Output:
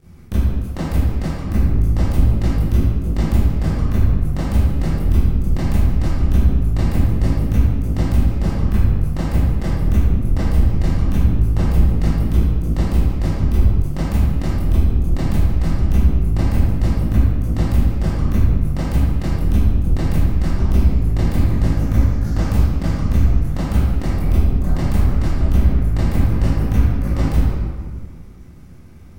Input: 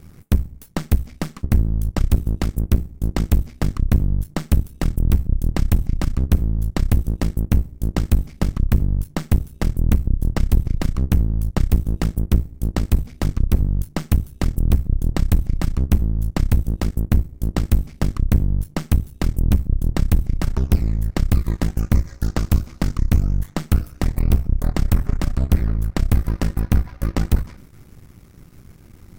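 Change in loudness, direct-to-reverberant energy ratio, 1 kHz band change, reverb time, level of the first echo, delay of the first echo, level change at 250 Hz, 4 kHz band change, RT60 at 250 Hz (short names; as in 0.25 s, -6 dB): +3.5 dB, -12.0 dB, +2.5 dB, 1.8 s, none, none, +3.5 dB, -0.5 dB, 1.9 s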